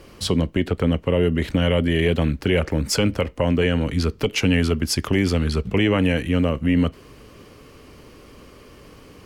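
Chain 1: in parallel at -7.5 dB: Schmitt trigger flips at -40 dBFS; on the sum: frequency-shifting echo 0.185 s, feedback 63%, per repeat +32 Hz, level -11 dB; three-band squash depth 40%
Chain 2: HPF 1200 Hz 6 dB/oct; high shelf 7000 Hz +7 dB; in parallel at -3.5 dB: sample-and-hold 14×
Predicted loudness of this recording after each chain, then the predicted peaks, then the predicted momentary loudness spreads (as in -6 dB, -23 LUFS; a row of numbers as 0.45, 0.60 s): -19.5, -25.5 LUFS; -5.0, -4.5 dBFS; 11, 7 LU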